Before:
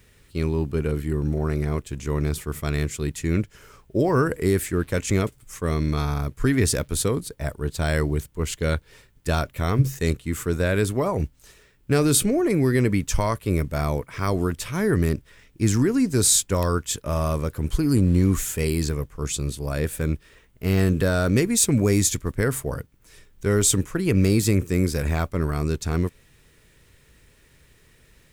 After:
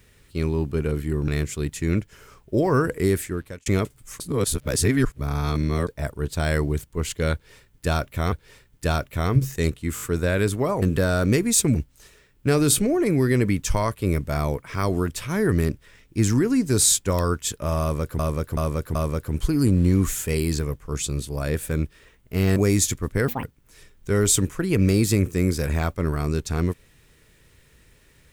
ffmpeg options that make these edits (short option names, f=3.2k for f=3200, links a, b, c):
-filter_complex "[0:a]asplit=17[a][b][c][d][e][f][g][h][i][j][k][l][m][n][o][p][q];[a]atrim=end=1.282[r];[b]atrim=start=2.698:end=5.08,asetpts=PTS-STARTPTS,afade=t=out:st=1.832:d=0.55[s];[c]atrim=start=5.08:end=5.622,asetpts=PTS-STARTPTS,afade=t=in:d=0.004:c=hsin[t];[d]atrim=start=5.618:end=7.292,asetpts=PTS-STARTPTS,areverse[u];[e]atrim=start=7.288:end=9.742[v];[f]atrim=start=8.748:end=10.402[w];[g]atrim=start=10.378:end=10.402[x];[h]atrim=start=10.378:end=10.402[y];[i]atrim=start=10.378:end=11.192[z];[j]atrim=start=20.858:end=21.792[aa];[k]atrim=start=11.188:end=17.632[ab];[l]atrim=start=17.248:end=17.632[ac];[m]atrim=start=17.248:end=17.632[ad];[n]atrim=start=17.248:end=20.862[ae];[o]atrim=start=21.788:end=22.514[af];[p]atrim=start=22.51:end=22.79,asetpts=PTS-STARTPTS,asetrate=80703,aresample=44100[ag];[q]atrim=start=22.786[ah];[s][t]concat=n=2:v=0:a=1[ai];[r][ai]acrossfade=d=0.004:c1=hsin:c2=hsin[aj];[aj][u]acrossfade=d=0.004:c1=hsin:c2=hsin[ak];[ak][v]acrossfade=d=0.004:c1=hsin:c2=hsin[al];[al][w]acrossfade=d=0.004:c1=hsin:c2=hsin[am];[am][x]acrossfade=d=0.004:c1=hsin:c2=hsin[an];[an][y]acrossfade=d=0.004:c1=hsin:c2=hsin[ao];[ao][z]acrossfade=d=0.004:c1=hsin:c2=hsin[ap];[ap][aa]acrossfade=d=0.004:c1=hsin:c2=hsin[aq];[aq][ab]acrossfade=d=0.004:c1=hsin:c2=hsin[ar];[ar][ac]acrossfade=d=0.004:c1=hsin:c2=hsin[as];[as][ad]acrossfade=d=0.004:c1=hsin:c2=hsin[at];[at][ae]acrossfade=d=0.004:c1=hsin:c2=hsin[au];[au][af]acrossfade=d=0.004:c1=hsin:c2=hsin[av];[av][ag]acrossfade=d=0.004:c1=hsin:c2=hsin[aw];[aw][ah]acrossfade=d=0.004:c1=hsin:c2=hsin"